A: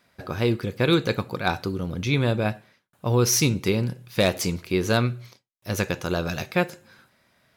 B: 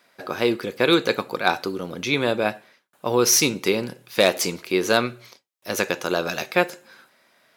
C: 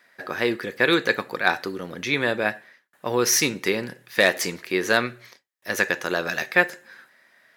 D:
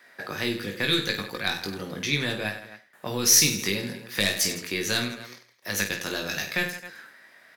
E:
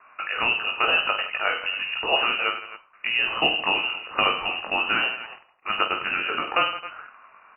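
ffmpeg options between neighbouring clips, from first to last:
-af "highpass=310,volume=1.68"
-af "equalizer=f=1800:t=o:w=0.35:g=13.5,volume=0.708"
-filter_complex "[0:a]aeval=exprs='0.891*(cos(1*acos(clip(val(0)/0.891,-1,1)))-cos(1*PI/2))+0.02*(cos(4*acos(clip(val(0)/0.891,-1,1)))-cos(4*PI/2))':c=same,aecho=1:1:20|50|95|162.5|263.8:0.631|0.398|0.251|0.158|0.1,acrossover=split=210|3000[s0][s1][s2];[s1]acompressor=threshold=0.0112:ratio=3[s3];[s0][s3][s2]amix=inputs=3:normalize=0,volume=1.33"
-filter_complex "[0:a]asplit=2[s0][s1];[s1]acrusher=bits=6:mix=0:aa=0.000001,volume=0.447[s2];[s0][s2]amix=inputs=2:normalize=0,lowpass=f=2600:t=q:w=0.5098,lowpass=f=2600:t=q:w=0.6013,lowpass=f=2600:t=q:w=0.9,lowpass=f=2600:t=q:w=2.563,afreqshift=-3000,volume=1.33"

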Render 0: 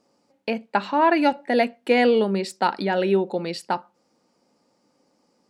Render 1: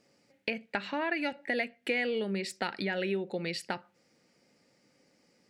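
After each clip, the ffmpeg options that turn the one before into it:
-af "equalizer=f=125:t=o:w=1:g=5,equalizer=f=250:t=o:w=1:g=-4,equalizer=f=1000:t=o:w=1:g=-11,equalizer=f=2000:t=o:w=1:g=10,acompressor=threshold=0.0251:ratio=3"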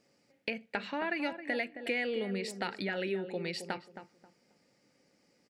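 -filter_complex "[0:a]asplit=2[s0][s1];[s1]adelay=268,lowpass=f=1200:p=1,volume=0.355,asplit=2[s2][s3];[s3]adelay=268,lowpass=f=1200:p=1,volume=0.26,asplit=2[s4][s5];[s5]adelay=268,lowpass=f=1200:p=1,volume=0.26[s6];[s0][s2][s4][s6]amix=inputs=4:normalize=0,volume=0.75"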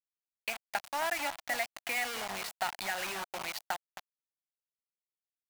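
-af "highpass=260,lowpass=7200,acrusher=bits=5:mix=0:aa=0.000001,lowshelf=f=580:t=q:w=3:g=-7.5"

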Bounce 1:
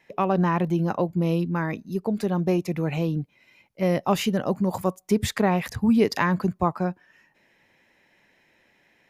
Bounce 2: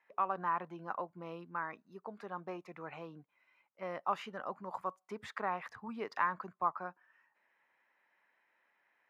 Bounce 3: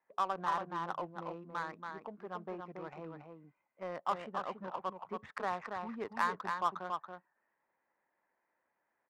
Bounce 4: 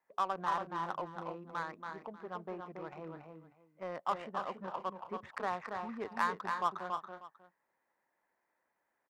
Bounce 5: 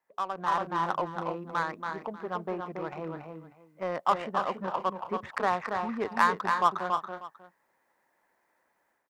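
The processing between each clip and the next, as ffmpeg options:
-af "bandpass=f=1200:t=q:w=2.4:csg=0,volume=0.631"
-af "acrusher=bits=6:mode=log:mix=0:aa=0.000001,aecho=1:1:280:0.562,adynamicsmooth=sensitivity=7.5:basefreq=1100"
-af "aecho=1:1:311:0.2"
-af "dynaudnorm=f=330:g=3:m=2.82"

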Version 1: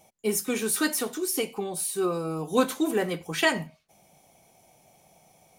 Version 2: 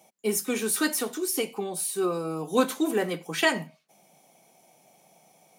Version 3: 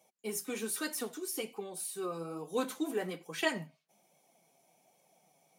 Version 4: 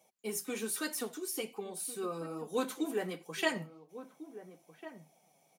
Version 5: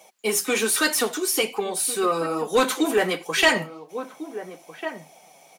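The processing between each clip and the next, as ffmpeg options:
-af "highpass=f=160:w=0.5412,highpass=f=160:w=1.3066"
-af "flanger=delay=1.8:depth=5.6:regen=44:speed=1.2:shape=sinusoidal,volume=0.531"
-filter_complex "[0:a]asplit=2[s0][s1];[s1]adelay=1399,volume=0.224,highshelf=f=4000:g=-31.5[s2];[s0][s2]amix=inputs=2:normalize=0"
-filter_complex "[0:a]asplit=2[s0][s1];[s1]highpass=f=720:p=1,volume=7.08,asoftclip=type=tanh:threshold=0.168[s2];[s0][s2]amix=inputs=2:normalize=0,lowpass=f=6200:p=1,volume=0.501,volume=2.66"

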